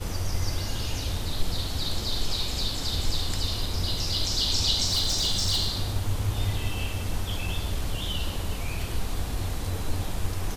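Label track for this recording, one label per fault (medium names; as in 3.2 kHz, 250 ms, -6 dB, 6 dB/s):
4.860000	5.690000	clipped -20 dBFS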